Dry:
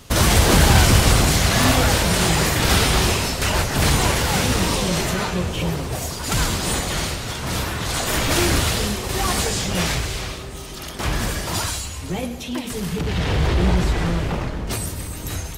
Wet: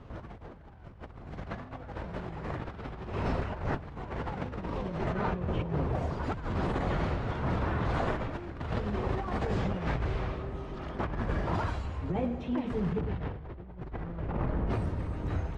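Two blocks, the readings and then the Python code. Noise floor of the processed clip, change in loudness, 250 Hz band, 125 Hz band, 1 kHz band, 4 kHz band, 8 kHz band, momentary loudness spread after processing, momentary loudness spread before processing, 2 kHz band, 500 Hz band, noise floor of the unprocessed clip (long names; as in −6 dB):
−47 dBFS, −14.0 dB, −11.0 dB, −12.5 dB, −12.5 dB, −28.5 dB, below −40 dB, 11 LU, 12 LU, −18.0 dB, −10.5 dB, −32 dBFS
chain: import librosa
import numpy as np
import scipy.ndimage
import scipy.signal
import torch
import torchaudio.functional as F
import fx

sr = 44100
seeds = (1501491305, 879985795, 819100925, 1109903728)

p1 = scipy.signal.sosfilt(scipy.signal.butter(2, 1300.0, 'lowpass', fs=sr, output='sos'), x)
p2 = p1 + fx.echo_single(p1, sr, ms=358, db=-23.0, dry=0)
p3 = fx.over_compress(p2, sr, threshold_db=-25.0, ratio=-0.5)
y = p3 * 10.0 ** (-7.5 / 20.0)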